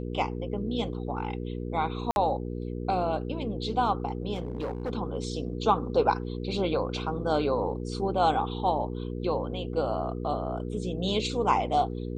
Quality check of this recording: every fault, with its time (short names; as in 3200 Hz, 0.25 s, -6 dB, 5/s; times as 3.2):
hum 60 Hz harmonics 8 -34 dBFS
2.11–2.16 gap 51 ms
4.34–4.92 clipped -27.5 dBFS